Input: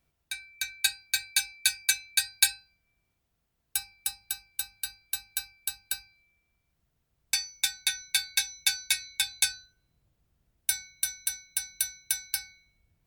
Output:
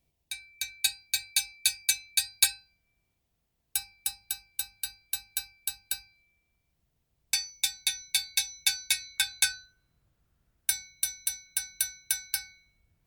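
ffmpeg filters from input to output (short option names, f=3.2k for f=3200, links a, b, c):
-af "asetnsamples=n=441:p=0,asendcmd='2.44 equalizer g -4.5;7.5 equalizer g -11;8.54 equalizer g -4;9.18 equalizer g 5;10.7 equalizer g -6;11.46 equalizer g 1',equalizer=f=1.4k:t=o:w=0.72:g=-12.5"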